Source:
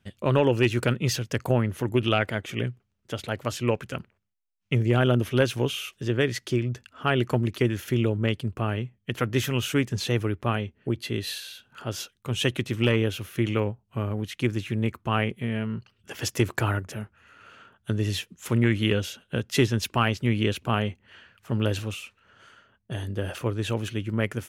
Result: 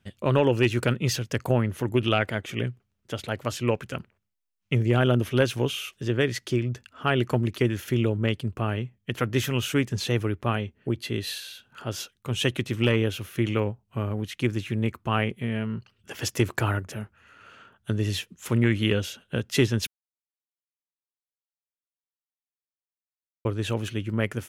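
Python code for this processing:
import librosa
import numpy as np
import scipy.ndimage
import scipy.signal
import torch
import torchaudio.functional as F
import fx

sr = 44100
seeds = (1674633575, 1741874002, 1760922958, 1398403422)

y = fx.edit(x, sr, fx.silence(start_s=19.87, length_s=3.58), tone=tone)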